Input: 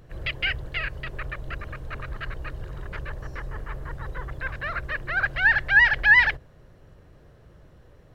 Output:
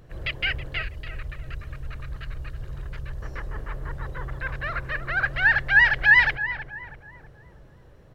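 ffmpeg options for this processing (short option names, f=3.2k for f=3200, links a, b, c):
-filter_complex "[0:a]asettb=1/sr,asplit=3[a][b][c];[a]atrim=end=0.824[d];[b]atrim=start=0.82:end=3.22,asetpts=PTS-STARTPTS,afade=t=in:d=0.004:c=qsin,afade=t=out:st=2.396:d=0.004:c=qsin,acrossover=split=160|3000[e][f][g];[f]acompressor=threshold=-52dB:ratio=2[h];[e][h][g]amix=inputs=3:normalize=0[i];[c]atrim=start=3.216[j];[d][i]acrossfade=d=0.004:c1=hsin:c2=qsin[k];[k][j]acrossfade=d=0.004:c1=qsin:c2=hsin,asplit=2[l][m];[m]adelay=323,lowpass=f=1.3k:p=1,volume=-8.5dB,asplit=2[n][o];[o]adelay=323,lowpass=f=1.3k:p=1,volume=0.52,asplit=2[p][q];[q]adelay=323,lowpass=f=1.3k:p=1,volume=0.52,asplit=2[r][s];[s]adelay=323,lowpass=f=1.3k:p=1,volume=0.52,asplit=2[t][u];[u]adelay=323,lowpass=f=1.3k:p=1,volume=0.52,asplit=2[v][w];[w]adelay=323,lowpass=f=1.3k:p=1,volume=0.52[x];[l][n][p][r][t][v][x]amix=inputs=7:normalize=0"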